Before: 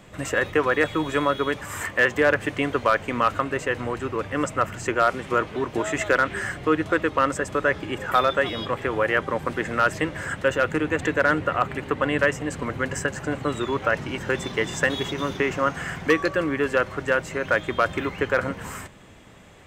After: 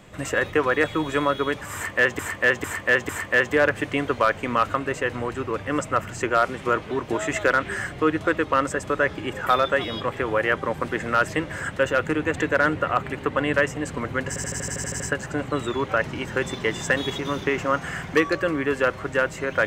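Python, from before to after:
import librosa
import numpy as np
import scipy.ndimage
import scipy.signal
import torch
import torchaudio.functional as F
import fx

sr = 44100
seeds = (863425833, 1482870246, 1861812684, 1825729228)

y = fx.edit(x, sr, fx.repeat(start_s=1.74, length_s=0.45, count=4),
    fx.stutter(start_s=12.93, slice_s=0.08, count=10), tone=tone)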